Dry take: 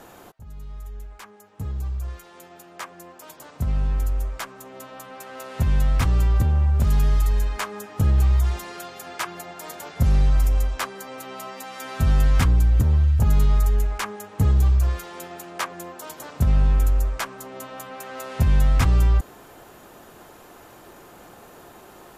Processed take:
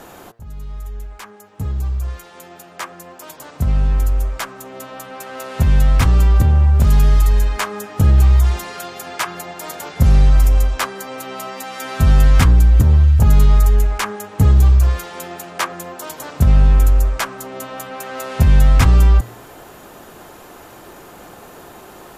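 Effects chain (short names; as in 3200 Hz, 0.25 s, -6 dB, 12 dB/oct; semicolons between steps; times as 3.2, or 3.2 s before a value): de-hum 115.7 Hz, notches 17; gain +7 dB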